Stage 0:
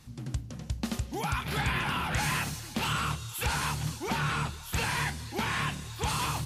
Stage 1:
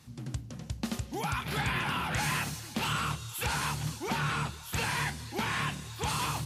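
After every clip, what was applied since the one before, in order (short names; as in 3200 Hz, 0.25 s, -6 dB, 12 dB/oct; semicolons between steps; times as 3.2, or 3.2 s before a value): HPF 76 Hz; gain -1 dB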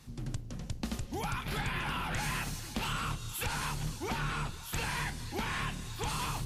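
octaver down 2 oct, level -1 dB; compressor 2:1, threshold -34 dBFS, peak gain reduction 5.5 dB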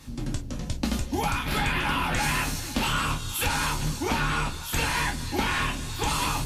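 non-linear reverb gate 80 ms falling, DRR 1.5 dB; gain +7 dB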